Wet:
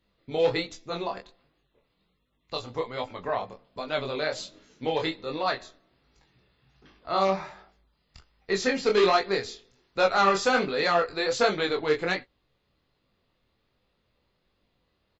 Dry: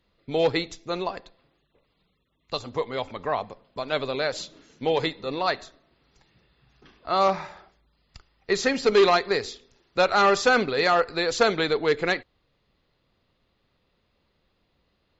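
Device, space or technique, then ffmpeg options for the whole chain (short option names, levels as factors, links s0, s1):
double-tracked vocal: -filter_complex "[0:a]asplit=2[s0][s1];[s1]adelay=16,volume=0.299[s2];[s0][s2]amix=inputs=2:normalize=0,flanger=delay=19.5:depth=6.9:speed=1.3"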